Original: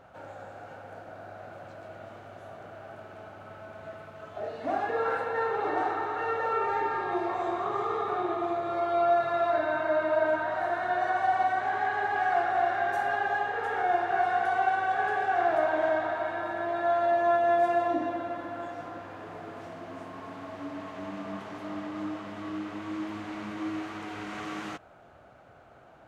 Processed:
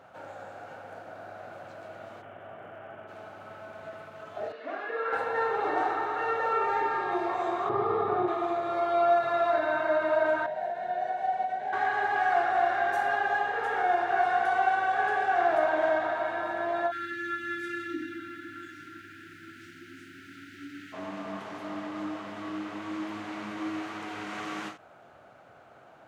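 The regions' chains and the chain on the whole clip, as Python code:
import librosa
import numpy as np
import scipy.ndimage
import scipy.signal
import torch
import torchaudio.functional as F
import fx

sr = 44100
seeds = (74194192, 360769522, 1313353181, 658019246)

y = fx.cheby1_lowpass(x, sr, hz=3200.0, order=5, at=(2.21, 3.07), fade=0.02)
y = fx.dmg_crackle(y, sr, seeds[0], per_s=510.0, level_db=-69.0, at=(2.21, 3.07), fade=0.02)
y = fx.chain(y, sr, fx.bandpass_edges(low_hz=420.0, high_hz=3100.0),
    fx.peak_eq(hz=810.0, db=-14.0, octaves=0.5), at=(4.52, 5.13))
y = fx.chain(y, sr, fx.tilt_eq(slope=-3.5),
    fx.resample_bad(factor=4, down='none', up='filtered'), at=(7.69, 8.28))
y = fx.chain(y, sr, fx.high_shelf(hz=2400.0, db=-12.0),
    fx.fixed_phaser(hz=320.0, stages=6), at=(10.46, 11.73))
y = fx.peak_eq(y, sr, hz=190.0, db=-7.5, octaves=0.95, at=(16.9, 20.92), fade=0.02)
y = fx.dmg_noise_colour(y, sr, seeds[1], colour='pink', level_db=-68.0, at=(16.9, 20.92), fade=0.02)
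y = fx.brickwall_bandstop(y, sr, low_hz=390.0, high_hz=1300.0, at=(16.9, 20.92), fade=0.02)
y = scipy.signal.sosfilt(scipy.signal.butter(2, 100.0, 'highpass', fs=sr, output='sos'), y)
y = fx.low_shelf(y, sr, hz=440.0, db=-4.0)
y = fx.end_taper(y, sr, db_per_s=160.0)
y = y * librosa.db_to_amplitude(2.0)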